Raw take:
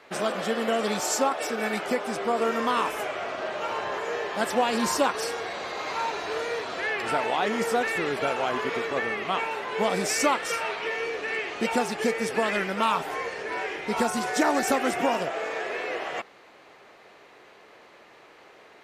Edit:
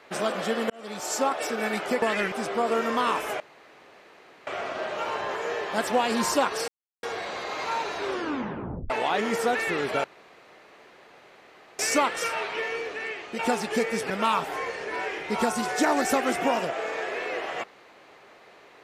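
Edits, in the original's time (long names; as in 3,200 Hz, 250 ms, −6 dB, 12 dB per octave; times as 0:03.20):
0:00.70–0:01.31: fade in
0:03.10: splice in room tone 1.07 s
0:05.31: splice in silence 0.35 s
0:06.25: tape stop 0.93 s
0:08.32–0:10.07: fill with room tone
0:10.87–0:11.67: fade out, to −7.5 dB
0:12.38–0:12.68: move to 0:02.02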